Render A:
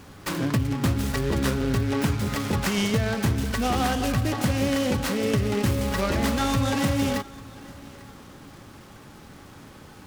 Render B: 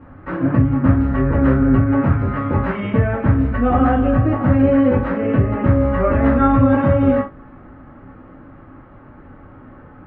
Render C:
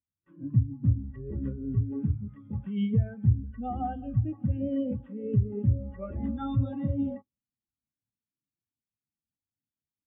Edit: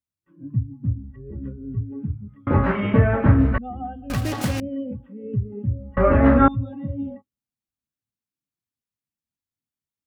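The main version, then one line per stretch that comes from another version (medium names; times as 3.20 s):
C
2.47–3.58 s: from B
4.10–4.60 s: from A
5.97–6.48 s: from B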